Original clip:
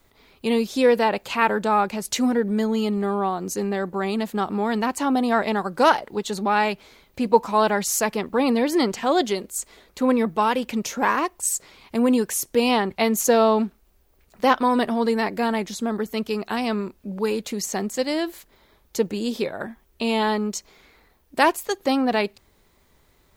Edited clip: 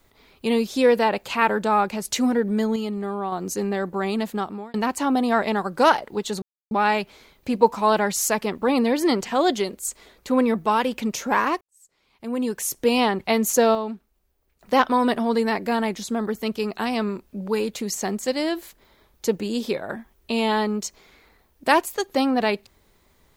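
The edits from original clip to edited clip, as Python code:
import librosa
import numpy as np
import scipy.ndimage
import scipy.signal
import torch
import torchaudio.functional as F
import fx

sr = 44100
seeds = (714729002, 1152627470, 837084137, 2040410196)

y = fx.edit(x, sr, fx.clip_gain(start_s=2.76, length_s=0.56, db=-4.5),
    fx.fade_out_span(start_s=4.3, length_s=0.44),
    fx.insert_silence(at_s=6.42, length_s=0.29),
    fx.fade_in_span(start_s=11.32, length_s=1.14, curve='qua'),
    fx.fade_down_up(start_s=13.27, length_s=1.24, db=-9.0, fade_s=0.19, curve='log'), tone=tone)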